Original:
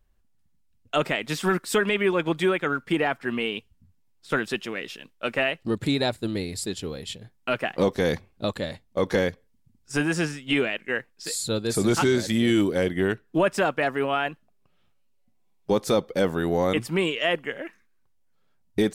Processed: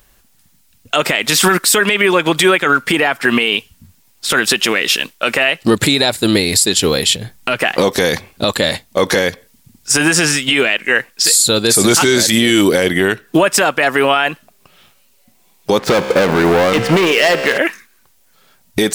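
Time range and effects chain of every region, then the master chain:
7.16–7.62 low shelf 160 Hz +10.5 dB + compressor 3:1, threshold -39 dBFS
15.78–17.58 LPF 2000 Hz + sample leveller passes 3 + resonator 66 Hz, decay 1.8 s
whole clip: tilt +2.5 dB/oct; compressor, threshold -28 dBFS; maximiser +23.5 dB; gain -1 dB

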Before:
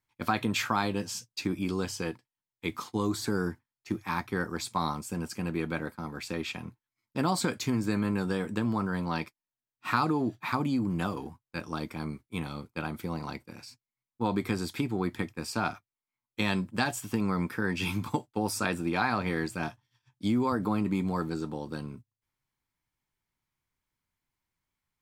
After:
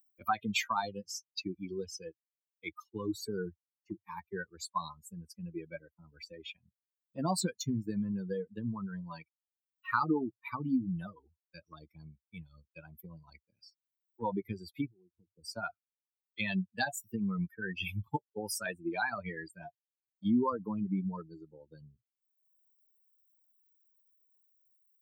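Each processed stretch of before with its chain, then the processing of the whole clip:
14.89–15.45 inverse Chebyshev low-pass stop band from 2100 Hz + compressor 3:1, threshold -38 dBFS
whole clip: per-bin expansion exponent 3; HPF 87 Hz; upward compressor, threshold -48 dBFS; gain +3 dB

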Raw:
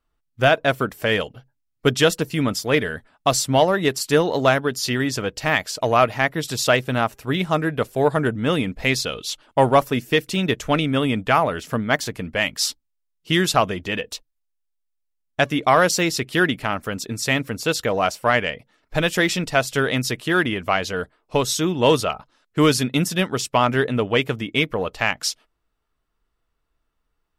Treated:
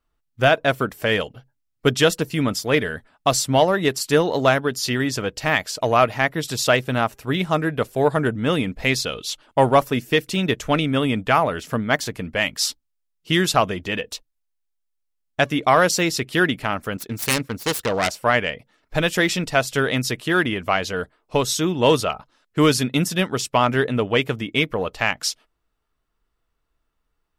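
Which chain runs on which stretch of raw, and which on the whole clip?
16.97–18.09 self-modulated delay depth 0.41 ms + expander -32 dBFS
whole clip: dry

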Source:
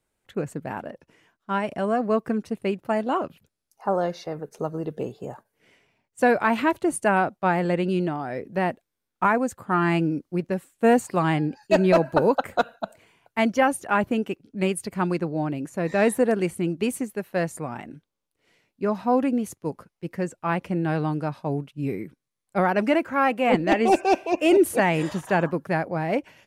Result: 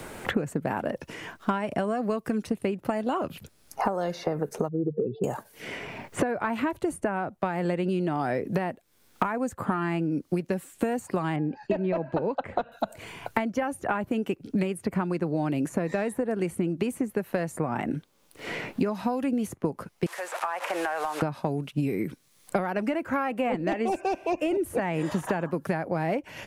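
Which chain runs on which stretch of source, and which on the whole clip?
4.68–5.24 spectral contrast raised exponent 2.5 + LPF 3400 Hz 24 dB/oct
11.36–12.72 LPF 2000 Hz + bell 1400 Hz -5.5 dB 0.44 oct
20.06–21.22 delta modulation 64 kbps, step -38 dBFS + HPF 660 Hz 24 dB/oct + compressor 16:1, threshold -41 dBFS
whole clip: compressor 16:1, threshold -33 dBFS; dynamic EQ 4200 Hz, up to -4 dB, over -57 dBFS, Q 0.7; three-band squash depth 100%; gain +9 dB

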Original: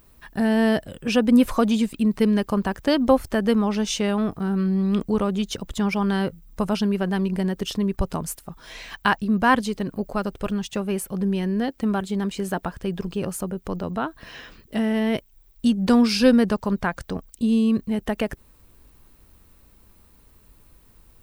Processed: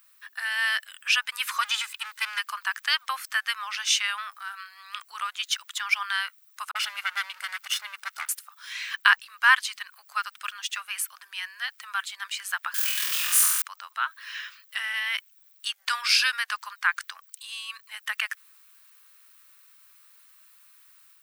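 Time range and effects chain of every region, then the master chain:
1.61–2.39 minimum comb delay 2 ms + HPF 470 Hz
6.71–8.29 minimum comb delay 1.4 ms + dispersion highs, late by 43 ms, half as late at 300 Hz + upward compressor, threshold -28 dBFS
12.74–13.62 switching spikes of -24 dBFS + HPF 330 Hz + flutter echo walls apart 4.1 m, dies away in 1.1 s
whole clip: steep high-pass 1200 Hz 36 dB/oct; dynamic EQ 2200 Hz, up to +4 dB, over -42 dBFS, Q 0.96; AGC gain up to 3.5 dB

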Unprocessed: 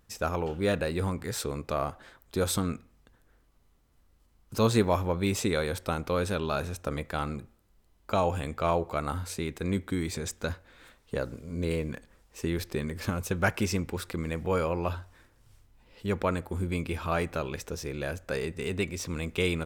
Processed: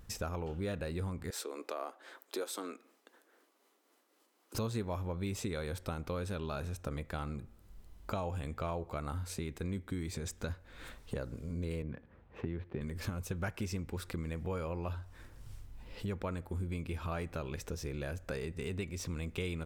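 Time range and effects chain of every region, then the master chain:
1.3–4.55 steep high-pass 300 Hz + tremolo triangle 3.9 Hz, depth 40%
11.82–12.81 median filter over 9 samples + HPF 69 Hz 24 dB/oct + air absorption 340 m
whole clip: low shelf 150 Hz +8 dB; compressor 3:1, threshold -45 dBFS; gain +4.5 dB

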